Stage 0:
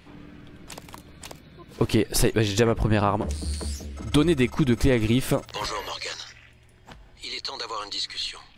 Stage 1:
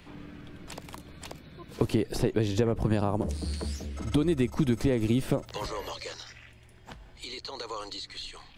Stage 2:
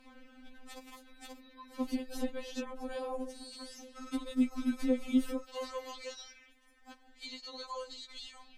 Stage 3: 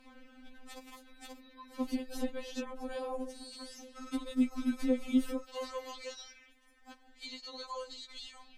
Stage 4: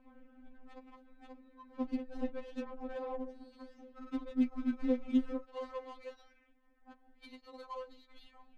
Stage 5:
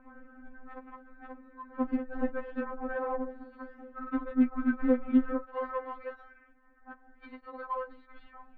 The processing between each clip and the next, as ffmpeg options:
-filter_complex "[0:a]acrossover=split=98|750|5200[s0][s1][s2][s3];[s0]acompressor=threshold=0.0178:ratio=4[s4];[s1]acompressor=threshold=0.0794:ratio=4[s5];[s2]acompressor=threshold=0.00794:ratio=4[s6];[s3]acompressor=threshold=0.00355:ratio=4[s7];[s4][s5][s6][s7]amix=inputs=4:normalize=0"
-af "afftfilt=real='re*3.46*eq(mod(b,12),0)':imag='im*3.46*eq(mod(b,12),0)':win_size=2048:overlap=0.75,volume=0.596"
-af anull
-af "adynamicsmooth=sensitivity=6.5:basefreq=1200,volume=0.841"
-af "lowpass=f=1500:t=q:w=3.6,volume=1.88"

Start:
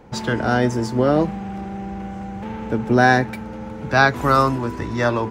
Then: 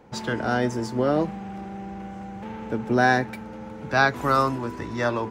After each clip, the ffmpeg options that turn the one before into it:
-af "lowshelf=f=95:g=-8,volume=0.596"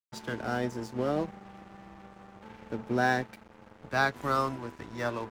-af "aeval=exprs='sgn(val(0))*max(abs(val(0))-0.0141,0)':c=same,volume=0.473"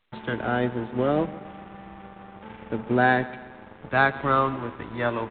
-af "aecho=1:1:139|278|417|556|695:0.119|0.0654|0.036|0.0198|0.0109,volume=2.11" -ar 8000 -c:a pcm_alaw

